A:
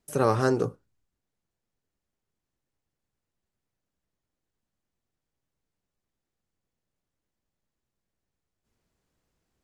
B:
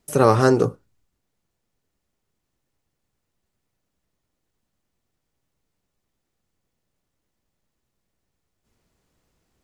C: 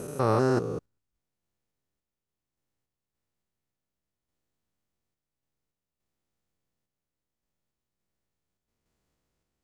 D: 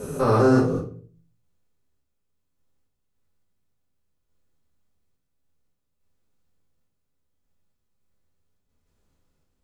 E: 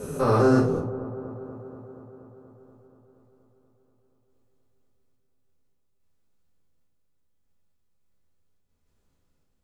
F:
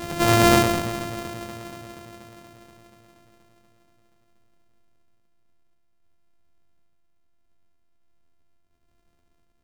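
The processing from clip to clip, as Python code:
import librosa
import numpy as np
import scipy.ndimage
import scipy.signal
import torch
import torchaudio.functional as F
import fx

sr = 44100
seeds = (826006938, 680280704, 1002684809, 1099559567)

y1 = fx.notch(x, sr, hz=1600.0, q=25.0)
y1 = y1 * librosa.db_to_amplitude(7.5)
y2 = fx.spec_steps(y1, sr, hold_ms=200)
y2 = fx.tremolo_random(y2, sr, seeds[0], hz=3.5, depth_pct=55)
y2 = y2 * librosa.db_to_amplitude(-5.0)
y3 = fx.room_shoebox(y2, sr, seeds[1], volume_m3=31.0, walls='mixed', distance_m=1.2)
y3 = y3 * librosa.db_to_amplitude(-3.0)
y4 = fx.echo_wet_lowpass(y3, sr, ms=239, feedback_pct=72, hz=950.0, wet_db=-13.0)
y4 = y4 * librosa.db_to_amplitude(-1.5)
y5 = np.r_[np.sort(y4[:len(y4) // 128 * 128].reshape(-1, 128), axis=1).ravel(), y4[len(y4) // 128 * 128:]]
y5 = fx.doubler(y5, sr, ms=19.0, db=-10.5)
y5 = y5 * librosa.db_to_amplitude(3.0)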